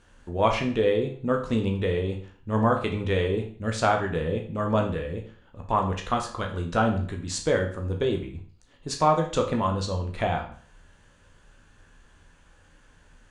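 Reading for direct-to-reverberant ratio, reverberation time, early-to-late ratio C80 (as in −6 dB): 2.0 dB, 0.45 s, 12.5 dB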